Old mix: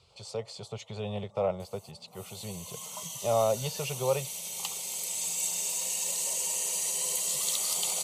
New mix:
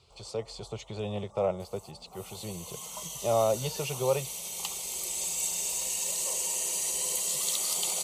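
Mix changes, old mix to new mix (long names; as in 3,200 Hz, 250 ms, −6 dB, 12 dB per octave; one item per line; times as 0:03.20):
first sound: remove four-pole ladder high-pass 460 Hz, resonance 55%
master: add parametric band 320 Hz +14 dB 0.28 octaves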